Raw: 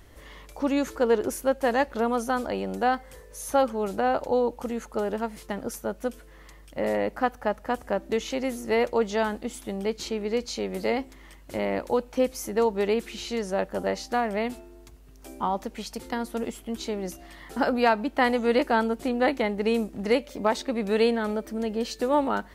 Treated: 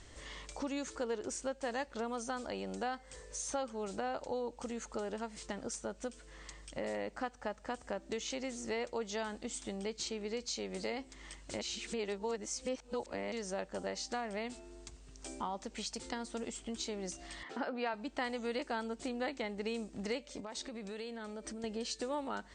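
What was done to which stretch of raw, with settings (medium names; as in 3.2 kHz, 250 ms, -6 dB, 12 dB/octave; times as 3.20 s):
11.61–13.32 s: reverse
17.43–17.94 s: band-pass 230–3000 Hz
20.40–21.64 s: compression 5:1, threshold -37 dBFS
whole clip: steep low-pass 8.8 kHz 96 dB/octave; treble shelf 3.4 kHz +12 dB; compression 2.5:1, threshold -36 dBFS; trim -4 dB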